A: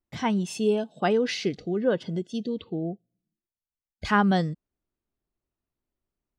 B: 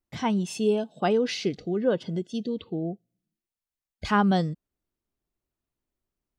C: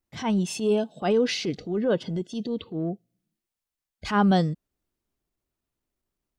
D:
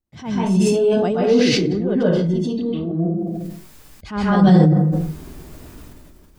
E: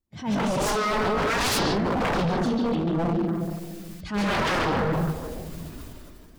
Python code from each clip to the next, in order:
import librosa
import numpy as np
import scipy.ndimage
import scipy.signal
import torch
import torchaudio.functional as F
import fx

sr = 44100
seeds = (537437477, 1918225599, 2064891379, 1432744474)

y1 = fx.dynamic_eq(x, sr, hz=1800.0, q=2.5, threshold_db=-44.0, ratio=4.0, max_db=-5)
y2 = fx.transient(y1, sr, attack_db=-8, sustain_db=1)
y2 = y2 * 10.0 ** (2.5 / 20.0)
y3 = fx.low_shelf(y2, sr, hz=420.0, db=9.5)
y3 = fx.rev_plate(y3, sr, seeds[0], rt60_s=0.51, hf_ratio=0.6, predelay_ms=115, drr_db=-8.5)
y3 = fx.sustainer(y3, sr, db_per_s=23.0)
y3 = y3 * 10.0 ** (-8.0 / 20.0)
y4 = fx.spec_quant(y3, sr, step_db=15)
y4 = 10.0 ** (-19.5 / 20.0) * (np.abs((y4 / 10.0 ** (-19.5 / 20.0) + 3.0) % 4.0 - 2.0) - 1.0)
y4 = fx.echo_stepped(y4, sr, ms=142, hz=3700.0, octaves=-1.4, feedback_pct=70, wet_db=-3.0)